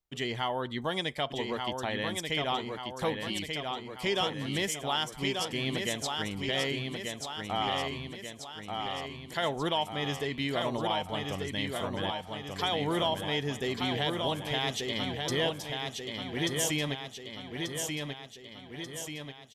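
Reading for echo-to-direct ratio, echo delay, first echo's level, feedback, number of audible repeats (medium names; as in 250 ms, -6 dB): -3.0 dB, 1186 ms, -4.5 dB, 56%, 7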